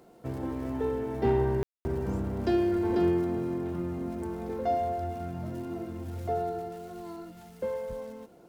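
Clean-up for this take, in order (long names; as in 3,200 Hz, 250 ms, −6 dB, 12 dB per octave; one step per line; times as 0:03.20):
clipped peaks rebuilt −17 dBFS
click removal
ambience match 0:01.63–0:01.85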